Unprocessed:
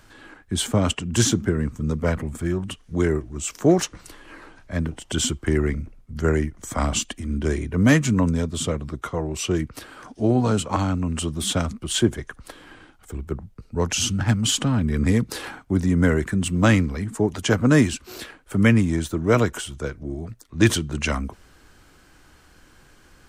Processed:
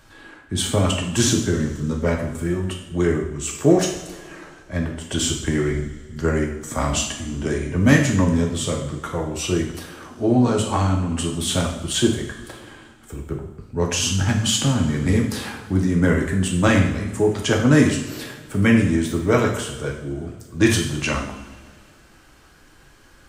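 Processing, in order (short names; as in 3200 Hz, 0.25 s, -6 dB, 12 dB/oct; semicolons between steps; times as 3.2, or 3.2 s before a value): two-slope reverb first 0.66 s, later 2.4 s, from -17 dB, DRR -0.5 dB; gain -1 dB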